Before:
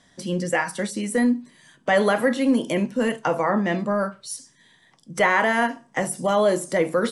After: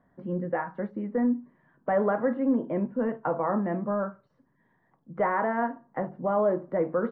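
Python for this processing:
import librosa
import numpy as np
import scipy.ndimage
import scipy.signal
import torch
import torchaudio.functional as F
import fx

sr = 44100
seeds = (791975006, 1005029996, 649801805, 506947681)

y = scipy.signal.sosfilt(scipy.signal.butter(4, 1400.0, 'lowpass', fs=sr, output='sos'), x)
y = y * 10.0 ** (-5.0 / 20.0)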